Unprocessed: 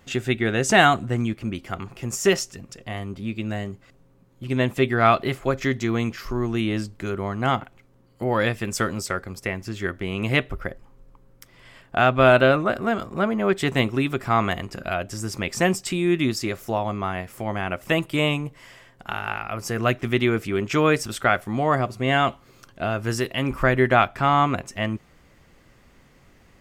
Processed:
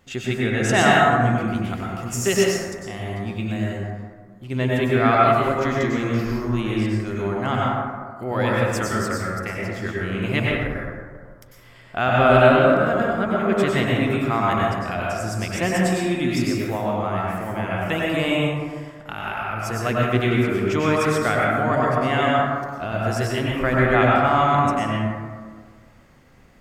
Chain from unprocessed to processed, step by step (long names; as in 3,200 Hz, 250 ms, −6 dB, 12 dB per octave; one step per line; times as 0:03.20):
0:01.36–0:03.70: high-shelf EQ 4,500 Hz +5 dB
dense smooth reverb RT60 1.7 s, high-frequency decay 0.35×, pre-delay 85 ms, DRR −4.5 dB
level −4 dB